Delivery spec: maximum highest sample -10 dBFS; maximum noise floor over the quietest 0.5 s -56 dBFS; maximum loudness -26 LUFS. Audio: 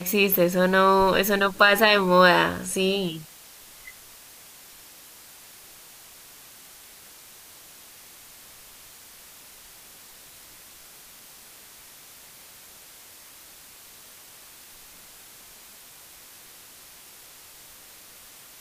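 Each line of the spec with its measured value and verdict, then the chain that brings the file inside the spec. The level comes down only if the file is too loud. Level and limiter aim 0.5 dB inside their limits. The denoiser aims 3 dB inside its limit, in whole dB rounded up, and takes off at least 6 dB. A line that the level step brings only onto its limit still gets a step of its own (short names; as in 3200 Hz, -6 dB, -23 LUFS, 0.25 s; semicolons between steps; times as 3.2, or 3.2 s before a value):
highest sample -4.5 dBFS: fail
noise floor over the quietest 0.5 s -48 dBFS: fail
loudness -19.5 LUFS: fail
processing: denoiser 6 dB, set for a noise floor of -48 dBFS; gain -7 dB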